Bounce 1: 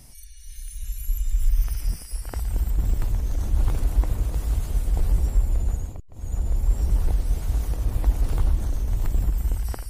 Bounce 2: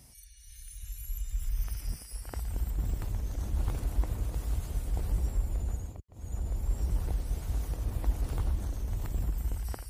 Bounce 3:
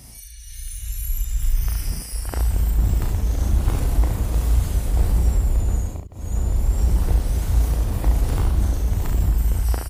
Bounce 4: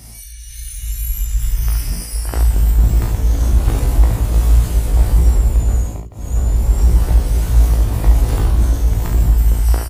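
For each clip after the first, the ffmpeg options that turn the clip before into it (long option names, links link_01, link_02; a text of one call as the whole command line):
ffmpeg -i in.wav -af "highpass=45,volume=-6dB" out.wav
ffmpeg -i in.wav -filter_complex "[0:a]asplit=2[link_01][link_02];[link_02]asoftclip=type=tanh:threshold=-27dB,volume=-5.5dB[link_03];[link_01][link_03]amix=inputs=2:normalize=0,aecho=1:1:36|70:0.531|0.531,volume=7.5dB" out.wav
ffmpeg -i in.wav -filter_complex "[0:a]asplit=2[link_01][link_02];[link_02]adelay=18,volume=-5dB[link_03];[link_01][link_03]amix=inputs=2:normalize=0,volume=4dB" out.wav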